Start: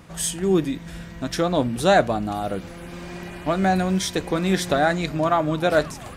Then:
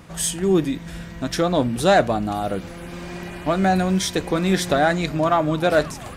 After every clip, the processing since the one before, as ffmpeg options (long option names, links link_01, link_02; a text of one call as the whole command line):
ffmpeg -i in.wav -af "acontrast=56,volume=-4dB" out.wav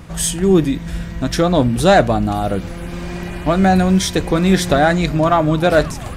ffmpeg -i in.wav -af "lowshelf=frequency=110:gain=11,volume=4dB" out.wav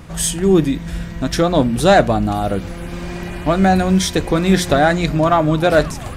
ffmpeg -i in.wav -af "bandreject=frequency=60:width_type=h:width=6,bandreject=frequency=120:width_type=h:width=6,bandreject=frequency=180:width_type=h:width=6" out.wav